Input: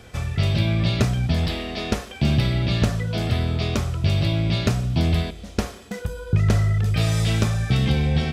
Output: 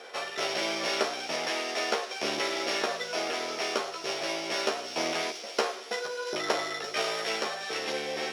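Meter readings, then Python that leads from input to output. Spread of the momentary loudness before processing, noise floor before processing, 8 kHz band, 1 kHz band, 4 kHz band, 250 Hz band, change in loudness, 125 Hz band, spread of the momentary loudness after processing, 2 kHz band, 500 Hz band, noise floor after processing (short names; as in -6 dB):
8 LU, -41 dBFS, 0.0 dB, +2.0 dB, -1.0 dB, -15.0 dB, -8.0 dB, -37.0 dB, 3 LU, 0.0 dB, -0.5 dB, -42 dBFS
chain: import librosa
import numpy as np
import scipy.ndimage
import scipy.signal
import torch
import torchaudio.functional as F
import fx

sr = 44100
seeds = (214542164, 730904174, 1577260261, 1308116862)

p1 = np.r_[np.sort(x[:len(x) // 8 * 8].reshape(-1, 8), axis=1).ravel(), x[len(x) // 8 * 8:]]
p2 = 10.0 ** (-17.5 / 20.0) * (np.abs((p1 / 10.0 ** (-17.5 / 20.0) + 3.0) % 4.0 - 2.0) - 1.0)
p3 = p1 + (p2 * librosa.db_to_amplitude(-5.5))
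p4 = fx.doubler(p3, sr, ms=13.0, db=-4.5)
p5 = fx.echo_wet_highpass(p4, sr, ms=342, feedback_pct=63, hz=3700.0, wet_db=-8)
p6 = fx.rider(p5, sr, range_db=10, speed_s=2.0)
p7 = scipy.signal.sosfilt(scipy.signal.butter(4, 430.0, 'highpass', fs=sr, output='sos'), p6)
p8 = fx.air_absorb(p7, sr, metres=89.0)
y = p8 * librosa.db_to_amplitude(-1.5)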